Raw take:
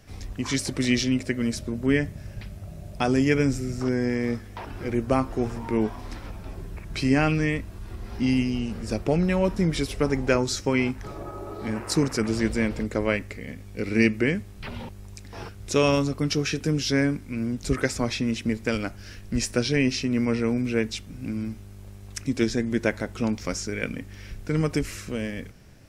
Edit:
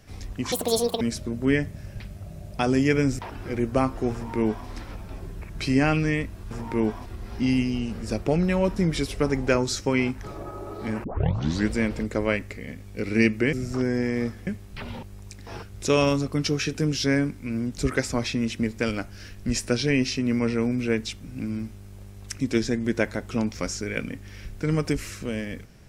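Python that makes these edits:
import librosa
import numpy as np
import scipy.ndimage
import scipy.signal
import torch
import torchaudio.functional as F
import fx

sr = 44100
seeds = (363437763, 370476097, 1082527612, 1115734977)

y = fx.edit(x, sr, fx.speed_span(start_s=0.52, length_s=0.9, speed=1.84),
    fx.move(start_s=3.6, length_s=0.94, to_s=14.33),
    fx.duplicate(start_s=5.48, length_s=0.55, to_s=7.86),
    fx.tape_start(start_s=11.84, length_s=0.64), tone=tone)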